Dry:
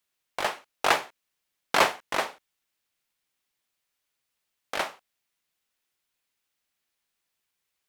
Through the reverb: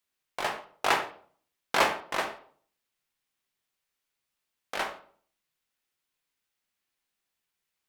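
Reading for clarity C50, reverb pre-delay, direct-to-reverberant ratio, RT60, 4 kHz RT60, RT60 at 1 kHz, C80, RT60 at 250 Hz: 10.0 dB, 14 ms, 4.5 dB, 0.50 s, 0.35 s, 0.45 s, 14.0 dB, 0.60 s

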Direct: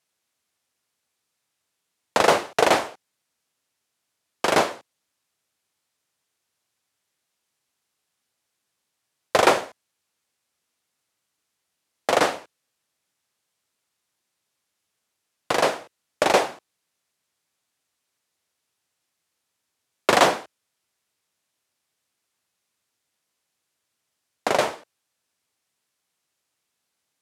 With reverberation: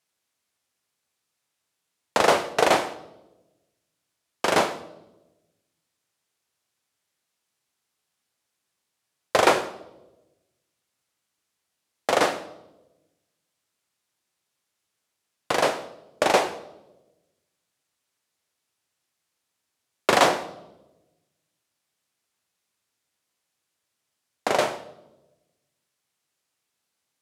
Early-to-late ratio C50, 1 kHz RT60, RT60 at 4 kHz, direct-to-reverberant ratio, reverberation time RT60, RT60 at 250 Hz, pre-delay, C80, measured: 14.5 dB, 0.85 s, 0.80 s, 11.0 dB, 1.0 s, 1.3 s, 28 ms, 16.5 dB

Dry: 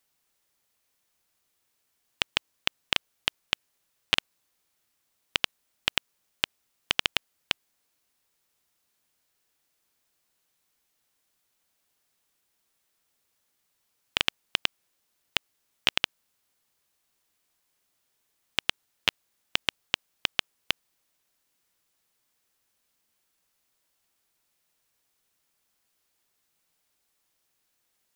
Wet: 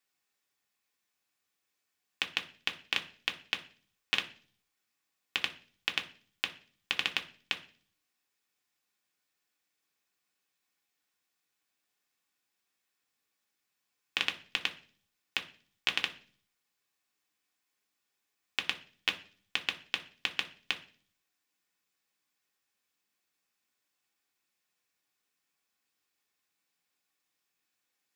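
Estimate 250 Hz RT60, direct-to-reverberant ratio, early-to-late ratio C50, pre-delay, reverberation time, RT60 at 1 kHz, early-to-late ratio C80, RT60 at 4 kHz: 0.65 s, 3.0 dB, 15.0 dB, 3 ms, 0.45 s, 0.40 s, 19.5 dB, 0.55 s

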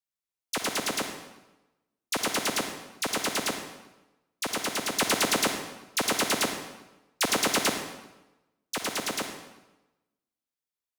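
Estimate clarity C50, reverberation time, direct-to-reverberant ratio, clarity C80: 6.0 dB, 1.0 s, 5.0 dB, 8.0 dB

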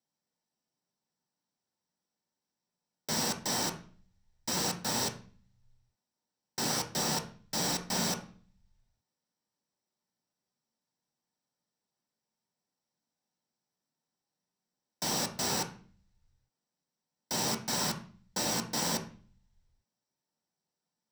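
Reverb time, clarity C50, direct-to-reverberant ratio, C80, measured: 0.45 s, 10.5 dB, 3.0 dB, 16.0 dB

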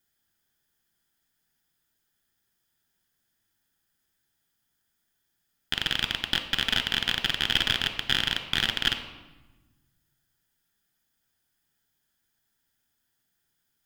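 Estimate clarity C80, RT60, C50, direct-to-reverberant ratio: 12.0 dB, 1.1 s, 10.5 dB, 7.0 dB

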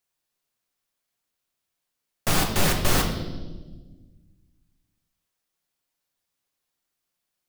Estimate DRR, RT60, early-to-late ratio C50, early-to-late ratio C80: 2.0 dB, 1.3 s, 6.0 dB, 8.5 dB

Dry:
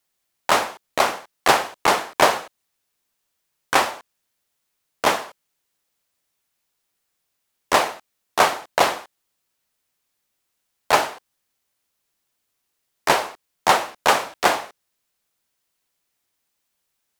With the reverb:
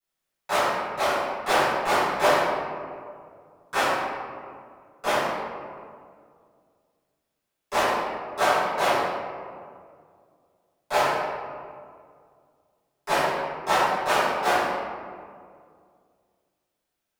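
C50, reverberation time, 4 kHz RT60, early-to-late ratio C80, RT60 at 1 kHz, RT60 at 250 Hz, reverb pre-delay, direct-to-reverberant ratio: -2.5 dB, 2.1 s, 1.0 s, 0.0 dB, 2.0 s, 2.5 s, 5 ms, -16.5 dB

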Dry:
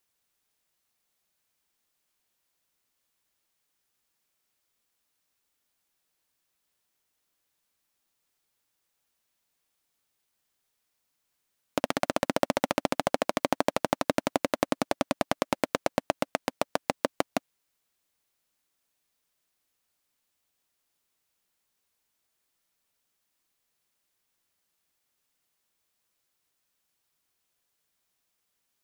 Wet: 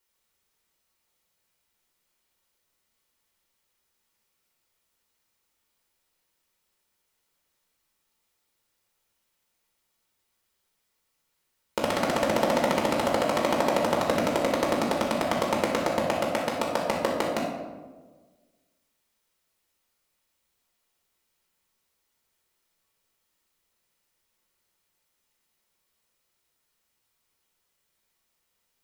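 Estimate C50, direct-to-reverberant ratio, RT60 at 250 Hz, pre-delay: 2.5 dB, -3.5 dB, 1.6 s, 4 ms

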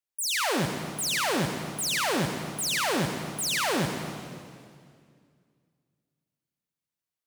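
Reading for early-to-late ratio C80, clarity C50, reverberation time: 5.5 dB, 4.5 dB, 2.2 s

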